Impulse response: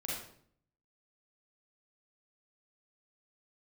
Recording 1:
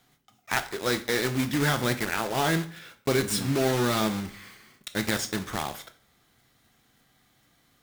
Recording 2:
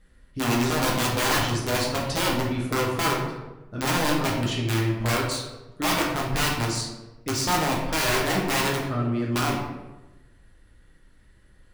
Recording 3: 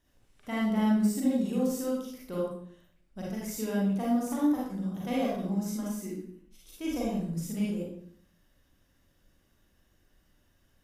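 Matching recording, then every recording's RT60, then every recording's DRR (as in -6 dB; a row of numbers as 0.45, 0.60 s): 3; 0.45, 1.0, 0.60 s; 8.5, -3.0, -6.0 dB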